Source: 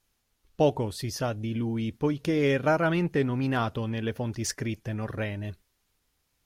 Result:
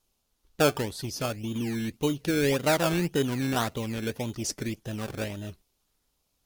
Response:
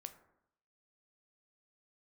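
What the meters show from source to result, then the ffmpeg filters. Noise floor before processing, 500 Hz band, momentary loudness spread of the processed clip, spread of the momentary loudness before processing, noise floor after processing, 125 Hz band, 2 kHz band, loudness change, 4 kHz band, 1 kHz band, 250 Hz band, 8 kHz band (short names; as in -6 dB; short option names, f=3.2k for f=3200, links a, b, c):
-75 dBFS, -1.0 dB, 10 LU, 9 LU, -76 dBFS, -2.5 dB, +0.5 dB, -0.5 dB, +5.0 dB, -0.5 dB, -0.5 dB, +4.0 dB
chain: -filter_complex "[0:a]equalizer=f=96:t=o:w=0.95:g=-4.5,acrossover=split=2300[a][b];[a]acrusher=samples=18:mix=1:aa=0.000001:lfo=1:lforange=10.8:lforate=1.8[c];[c][b]amix=inputs=2:normalize=0"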